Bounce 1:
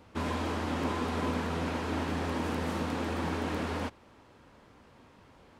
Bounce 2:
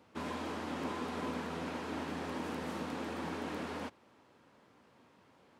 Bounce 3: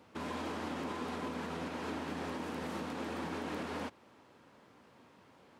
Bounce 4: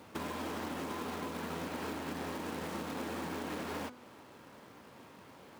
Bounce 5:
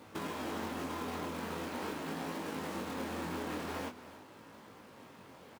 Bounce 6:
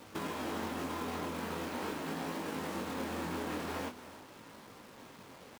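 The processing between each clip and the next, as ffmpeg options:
-af "highpass=140,volume=0.501"
-af "alimiter=level_in=2.82:limit=0.0631:level=0:latency=1:release=144,volume=0.355,volume=1.41"
-af "acompressor=threshold=0.00794:ratio=12,acrusher=bits=3:mode=log:mix=0:aa=0.000001,bandreject=f=247.7:t=h:w=4,bandreject=f=495.4:t=h:w=4,bandreject=f=743.1:t=h:w=4,bandreject=f=990.8:t=h:w=4,bandreject=f=1238.5:t=h:w=4,bandreject=f=1486.2:t=h:w=4,bandreject=f=1733.9:t=h:w=4,bandreject=f=1981.6:t=h:w=4,bandreject=f=2229.3:t=h:w=4,bandreject=f=2477:t=h:w=4,bandreject=f=2724.7:t=h:w=4,bandreject=f=2972.4:t=h:w=4,bandreject=f=3220.1:t=h:w=4,bandreject=f=3467.8:t=h:w=4,bandreject=f=3715.5:t=h:w=4,bandreject=f=3963.2:t=h:w=4,bandreject=f=4210.9:t=h:w=4,bandreject=f=4458.6:t=h:w=4,bandreject=f=4706.3:t=h:w=4,bandreject=f=4954:t=h:w=4,bandreject=f=5201.7:t=h:w=4,bandreject=f=5449.4:t=h:w=4,bandreject=f=5697.1:t=h:w=4,bandreject=f=5944.8:t=h:w=4,bandreject=f=6192.5:t=h:w=4,bandreject=f=6440.2:t=h:w=4,bandreject=f=6687.9:t=h:w=4,bandreject=f=6935.6:t=h:w=4,bandreject=f=7183.3:t=h:w=4,bandreject=f=7431:t=h:w=4,bandreject=f=7678.7:t=h:w=4,bandreject=f=7926.4:t=h:w=4,bandreject=f=8174.1:t=h:w=4,bandreject=f=8421.8:t=h:w=4,bandreject=f=8669.5:t=h:w=4,bandreject=f=8917.2:t=h:w=4,bandreject=f=9164.9:t=h:w=4,bandreject=f=9412.6:t=h:w=4,bandreject=f=9660.3:t=h:w=4,volume=2.11"
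-af "flanger=delay=18.5:depth=5.1:speed=0.44,aecho=1:1:281:0.168,volume=1.41"
-af "acrusher=bits=8:mix=0:aa=0.5,volume=1.12"

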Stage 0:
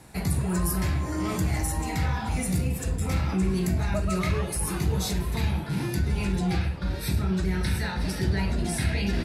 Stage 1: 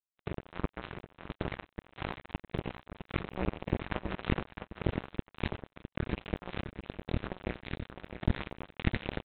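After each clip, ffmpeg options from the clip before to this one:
-af "aresample=8000,acrusher=bits=2:mix=0:aa=0.5,aresample=44100,aecho=1:1:658:0.355"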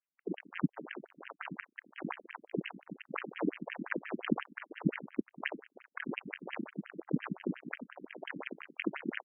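-af "equalizer=f=680:t=o:w=2.5:g=-7,afftfilt=real='re*between(b*sr/1024,230*pow(2300/230,0.5+0.5*sin(2*PI*5.7*pts/sr))/1.41,230*pow(2300/230,0.5+0.5*sin(2*PI*5.7*pts/sr))*1.41)':imag='im*between(b*sr/1024,230*pow(2300/230,0.5+0.5*sin(2*PI*5.7*pts/sr))/1.41,230*pow(2300/230,0.5+0.5*sin(2*PI*5.7*pts/sr))*1.41)':win_size=1024:overlap=0.75,volume=3.55"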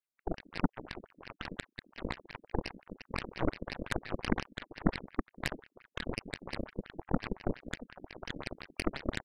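-af "aeval=exprs='0.188*(cos(1*acos(clip(val(0)/0.188,-1,1)))-cos(1*PI/2))+0.0188*(cos(3*acos(clip(val(0)/0.188,-1,1)))-cos(3*PI/2))+0.0376*(cos(8*acos(clip(val(0)/0.188,-1,1)))-cos(8*PI/2))':c=same,volume=1.12"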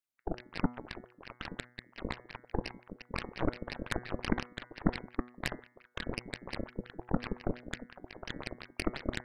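-af "bandreject=f=122.3:t=h:w=4,bandreject=f=244.6:t=h:w=4,bandreject=f=366.9:t=h:w=4,bandreject=f=489.2:t=h:w=4,bandreject=f=611.5:t=h:w=4,bandreject=f=733.8:t=h:w=4,bandreject=f=856.1:t=h:w=4,bandreject=f=978.4:t=h:w=4,bandreject=f=1100.7:t=h:w=4,bandreject=f=1223:t=h:w=4,bandreject=f=1345.3:t=h:w=4,bandreject=f=1467.6:t=h:w=4,bandreject=f=1589.9:t=h:w=4,bandreject=f=1712.2:t=h:w=4,bandreject=f=1834.5:t=h:w=4,bandreject=f=1956.8:t=h:w=4,bandreject=f=2079.1:t=h:w=4,bandreject=f=2201.4:t=h:w=4"

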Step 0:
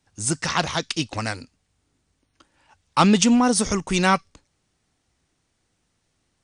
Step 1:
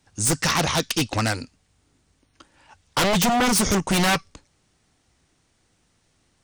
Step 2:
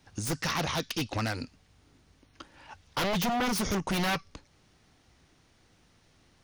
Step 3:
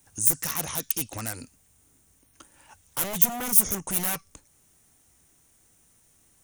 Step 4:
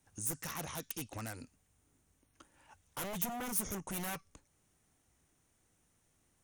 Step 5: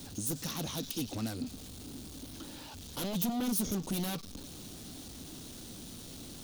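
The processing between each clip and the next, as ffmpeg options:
-filter_complex "[0:a]asplit=2[s0][s1];[s1]alimiter=limit=0.251:level=0:latency=1:release=32,volume=0.891[s2];[s0][s2]amix=inputs=2:normalize=0,aeval=exprs='0.2*(abs(mod(val(0)/0.2+3,4)-2)-1)':c=same"
-af "alimiter=level_in=1.19:limit=0.0631:level=0:latency=1:release=216,volume=0.841,equalizer=f=8100:w=2.4:g=-11.5,volume=1.41"
-af "aexciter=amount=15:drive=3.4:freq=6900,volume=0.562"
-af "aemphasis=mode=reproduction:type=cd,volume=0.422"
-af "aeval=exprs='val(0)+0.5*0.00708*sgn(val(0))':c=same,equalizer=f=250:t=o:w=1:g=9,equalizer=f=1000:t=o:w=1:g=-4,equalizer=f=2000:t=o:w=1:g=-9,equalizer=f=4000:t=o:w=1:g=10,equalizer=f=8000:t=o:w=1:g=-4,volume=1.12"

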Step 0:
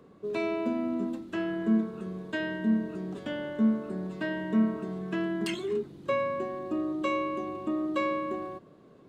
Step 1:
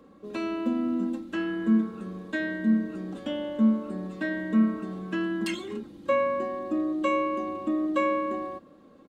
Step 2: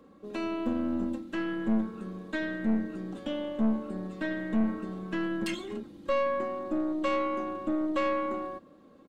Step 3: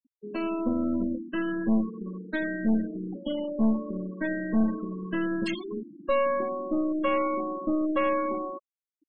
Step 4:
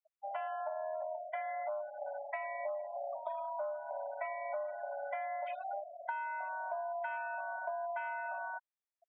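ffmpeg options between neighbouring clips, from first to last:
-af "aecho=1:1:3.7:0.67"
-af "aeval=exprs='(tanh(12.6*val(0)+0.5)-tanh(0.5))/12.6':c=same"
-af "afftfilt=real='re*gte(hypot(re,im),0.0224)':imag='im*gte(hypot(re,im),0.0224)':win_size=1024:overlap=0.75,volume=1.41"
-af "highpass=f=190:t=q:w=0.5412,highpass=f=190:t=q:w=1.307,lowpass=f=2100:t=q:w=0.5176,lowpass=f=2100:t=q:w=0.7071,lowpass=f=2100:t=q:w=1.932,afreqshift=380,acompressor=threshold=0.0178:ratio=12,volume=0.891"

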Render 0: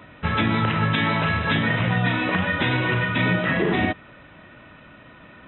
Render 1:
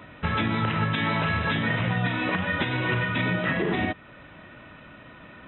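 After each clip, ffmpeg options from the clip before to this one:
-af "alimiter=limit=0.178:level=0:latency=1:release=382"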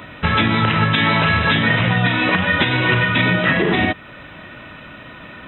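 -af "highshelf=f=2800:g=7.5,volume=2.51"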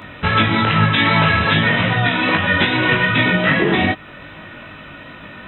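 -af "flanger=delay=19:depth=2.4:speed=2.5,volume=1.58"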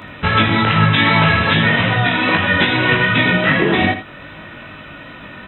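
-af "aecho=1:1:81:0.282,volume=1.12"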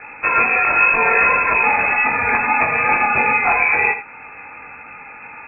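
-af "lowpass=f=2300:t=q:w=0.5098,lowpass=f=2300:t=q:w=0.6013,lowpass=f=2300:t=q:w=0.9,lowpass=f=2300:t=q:w=2.563,afreqshift=-2700,volume=0.891"

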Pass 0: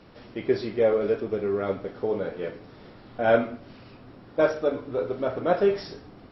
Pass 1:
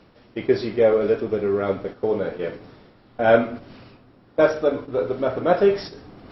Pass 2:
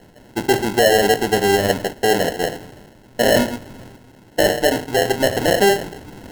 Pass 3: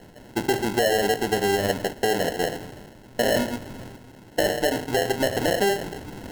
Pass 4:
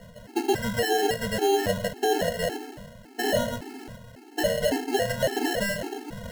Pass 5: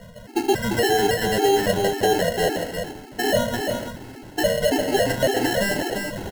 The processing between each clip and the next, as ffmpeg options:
-af "agate=range=0.316:threshold=0.0158:ratio=16:detection=peak,areverse,acompressor=mode=upward:threshold=0.0126:ratio=2.5,areverse,volume=1.68"
-af "alimiter=limit=0.224:level=0:latency=1:release=13,acrusher=samples=37:mix=1:aa=0.000001,volume=2"
-af "acompressor=threshold=0.0794:ratio=2.5"
-af "aeval=exprs='0.282*sin(PI/2*1.58*val(0)/0.282)':c=same,afftfilt=real='re*gt(sin(2*PI*1.8*pts/sr)*(1-2*mod(floor(b*sr/1024/230),2)),0)':imag='im*gt(sin(2*PI*1.8*pts/sr)*(1-2*mod(floor(b*sr/1024/230),2)),0)':win_size=1024:overlap=0.75,volume=0.562"
-af "aecho=1:1:346:0.531,volume=1.58"

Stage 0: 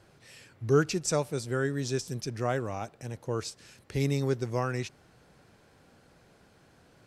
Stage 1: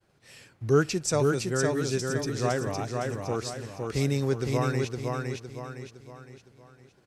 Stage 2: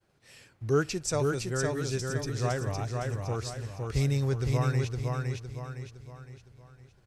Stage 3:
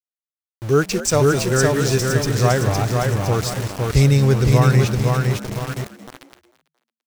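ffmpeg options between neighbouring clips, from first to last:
-filter_complex "[0:a]agate=range=0.0224:threshold=0.00251:ratio=3:detection=peak,asplit=2[s0][s1];[s1]aecho=0:1:511|1022|1533|2044|2555:0.668|0.281|0.118|0.0495|0.0208[s2];[s0][s2]amix=inputs=2:normalize=0,volume=1.19"
-af "asubboost=boost=8:cutoff=91,volume=0.708"
-filter_complex "[0:a]aeval=exprs='val(0)*gte(abs(val(0)),0.0126)':c=same,asplit=4[s0][s1][s2][s3];[s1]adelay=223,afreqshift=75,volume=0.168[s4];[s2]adelay=446,afreqshift=150,volume=0.0624[s5];[s3]adelay=669,afreqshift=225,volume=0.0229[s6];[s0][s4][s5][s6]amix=inputs=4:normalize=0,dynaudnorm=f=200:g=9:m=2.11,volume=2.11"

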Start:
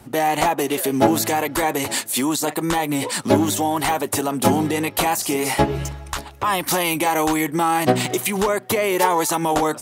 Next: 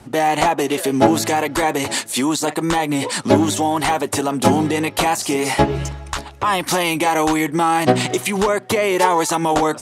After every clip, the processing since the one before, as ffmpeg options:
-af "lowpass=8900,volume=1.33"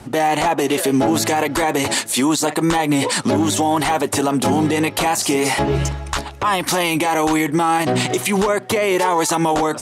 -af "alimiter=level_in=4.22:limit=0.891:release=50:level=0:latency=1,volume=0.398"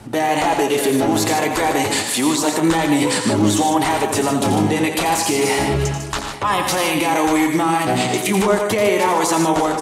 -filter_complex "[0:a]flanger=delay=9.1:depth=1.2:regen=66:speed=1.5:shape=triangular,asplit=2[s0][s1];[s1]aecho=0:1:86|110|151|344|843:0.376|0.282|0.422|0.15|0.112[s2];[s0][s2]amix=inputs=2:normalize=0,volume=1.41"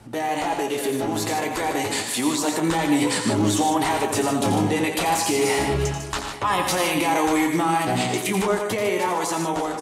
-filter_complex "[0:a]dynaudnorm=f=590:g=7:m=3.76,asplit=2[s0][s1];[s1]adelay=17,volume=0.299[s2];[s0][s2]amix=inputs=2:normalize=0,volume=0.398"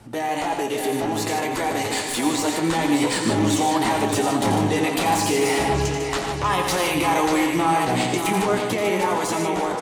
-filter_complex "[0:a]acrossover=split=7000[s0][s1];[s0]aecho=1:1:591|1182|1773|2364|2955|3546:0.447|0.214|0.103|0.0494|0.0237|0.0114[s2];[s1]aeval=exprs='clip(val(0),-1,0.0188)':c=same[s3];[s2][s3]amix=inputs=2:normalize=0"

